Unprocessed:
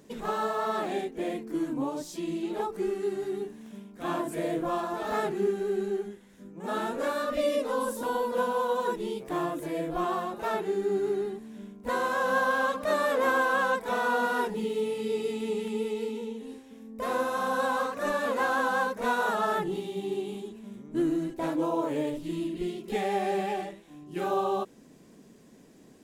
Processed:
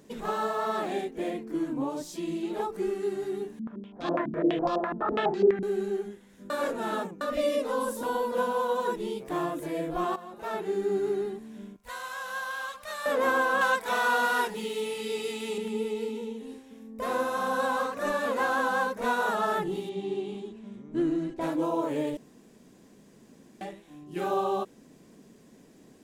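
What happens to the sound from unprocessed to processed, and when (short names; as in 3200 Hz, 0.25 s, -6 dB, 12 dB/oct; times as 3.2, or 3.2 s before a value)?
1.3–1.9 high shelf 5300 Hz -5.5 dB
3.59–5.63 stepped low-pass 12 Hz 220–4800 Hz
6.5–7.21 reverse
10.16–10.76 fade in, from -15 dB
11.76–13.06 passive tone stack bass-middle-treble 10-0-10
13.61–15.58 tilt shelf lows -6.5 dB, about 710 Hz
19.89–21.41 air absorption 70 m
22.17–23.61 room tone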